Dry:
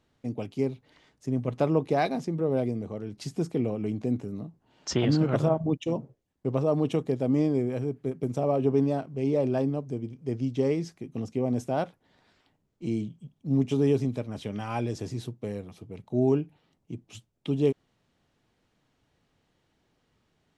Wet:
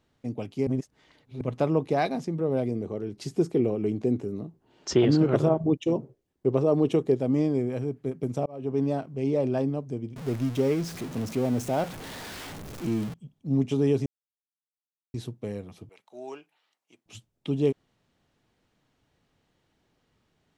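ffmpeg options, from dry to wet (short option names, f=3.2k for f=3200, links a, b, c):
-filter_complex "[0:a]asettb=1/sr,asplit=3[a][b][c];[a]atrim=end=2.714[d];[b]atrim=start=2.71:end=7.2,asetpts=PTS-STARTPTS,afade=t=in:d=0.004:c=qsin,afade=t=out:st=4.486:d=0.004:c=qsin,equalizer=f=380:t=o:w=0.53:g=8.5[e];[c]atrim=start=7.196[f];[d][e]acrossfade=d=0.004:c1=hsin:c2=qsin[g];[g][f]acrossfade=d=0.004:c1=qsin:c2=hsin,asettb=1/sr,asplit=3[h][i][j];[h]atrim=end=10.164[k];[i]atrim=start=10.16:end=13.14,asetpts=PTS-STARTPTS,afade=t=in:d=0.004:c=qsin,afade=t=out:st=2.976:d=0.004:c=qsin,aeval=exprs='val(0)+0.5*0.02*sgn(val(0))':c=same[l];[j]atrim=start=13.136[m];[k][l]acrossfade=d=0.004:c1=hsin:c2=qsin[n];[n][m]acrossfade=d=0.004:c1=qsin:c2=hsin,asettb=1/sr,asplit=3[o][p][q];[o]atrim=end=15.894[r];[p]atrim=start=15.89:end=17.06,asetpts=PTS-STARTPTS,afade=t=in:d=0.004:c=qsin,afade=t=out:st=1.166:d=0.004:c=qsin,highpass=1k[s];[q]atrim=start=17.056[t];[r][s]acrossfade=d=0.004:c1=hsin:c2=qsin[u];[u][t]acrossfade=d=0.004:c1=qsin:c2=hsin,asplit=6[v][w][x][y][z][aa];[v]atrim=end=0.672[ab];[w]atrim=start=0.668:end=1.412,asetpts=PTS-STARTPTS,areverse[ac];[x]atrim=start=1.408:end=8.46,asetpts=PTS-STARTPTS,afade=t=out:st=7.048:d=0.004:c=hsin[ad];[y]atrim=start=8.46:end=14.06,asetpts=PTS-STARTPTS,afade=t=in:d=0.44,afade=t=out:st=5.596:d=0.004:c=hsin[ae];[z]atrim=start=14.06:end=15.14,asetpts=PTS-STARTPTS,volume=0[af];[aa]atrim=start=15.14,asetpts=PTS-STARTPTS,afade=t=in:d=0.004:c=hsin[ag];[ab][ac]acrossfade=d=0.004:c1=hsin:c2=hsin[ah];[ad][ae][af][ag]concat=n=4:v=0:a=1[ai];[ah][ai]acrossfade=d=0.004:c1=hsin:c2=hsin"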